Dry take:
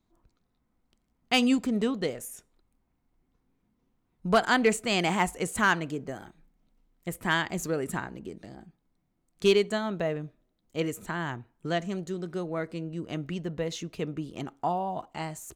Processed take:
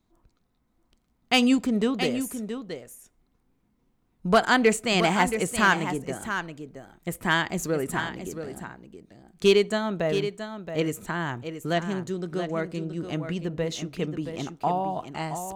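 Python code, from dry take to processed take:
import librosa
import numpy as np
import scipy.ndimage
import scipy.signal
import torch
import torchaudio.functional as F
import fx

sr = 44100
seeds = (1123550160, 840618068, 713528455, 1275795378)

y = x + 10.0 ** (-9.0 / 20.0) * np.pad(x, (int(674 * sr / 1000.0), 0))[:len(x)]
y = y * 10.0 ** (3.0 / 20.0)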